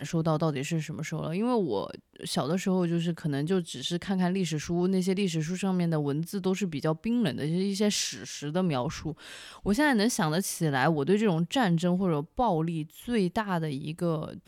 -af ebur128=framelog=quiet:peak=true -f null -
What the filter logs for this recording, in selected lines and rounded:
Integrated loudness:
  I:         -28.4 LUFS
  Threshold: -38.6 LUFS
Loudness range:
  LRA:         3.2 LU
  Threshold: -48.4 LUFS
  LRA low:   -29.7 LUFS
  LRA high:  -26.6 LUFS
True peak:
  Peak:      -12.4 dBFS